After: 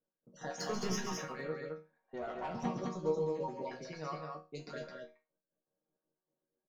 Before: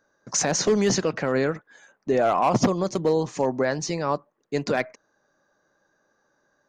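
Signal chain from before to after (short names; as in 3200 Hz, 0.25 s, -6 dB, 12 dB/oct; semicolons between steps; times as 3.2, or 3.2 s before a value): random spectral dropouts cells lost 39%; LPF 5900 Hz 12 dB/oct; low-pass opened by the level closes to 550 Hz, open at -21 dBFS; 0.59–1.2 sample leveller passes 2; 3.58–4.61 high shelf 3700 Hz +9.5 dB; resonator bank D#3 minor, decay 0.28 s; loudspeakers at several distances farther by 47 m -8 dB, 74 m -4 dB; 2.12–2.65 tube stage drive 32 dB, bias 0.45; gain -1 dB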